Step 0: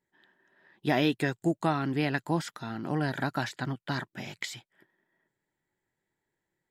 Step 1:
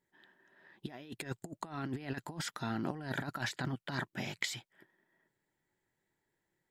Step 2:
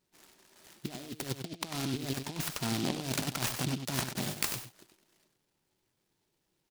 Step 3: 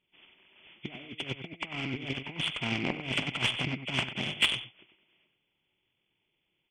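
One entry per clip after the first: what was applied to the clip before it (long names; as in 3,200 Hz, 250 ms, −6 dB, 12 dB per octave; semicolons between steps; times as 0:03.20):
compressor whose output falls as the input rises −33 dBFS, ratio −0.5; level −4.5 dB
on a send: single-tap delay 96 ms −8 dB; on the sum: short delay modulated by noise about 3,500 Hz, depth 0.17 ms; level +4 dB
hearing-aid frequency compression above 1,900 Hz 4 to 1; harmonic generator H 3 −18 dB, 7 −28 dB, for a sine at −12.5 dBFS; level +6 dB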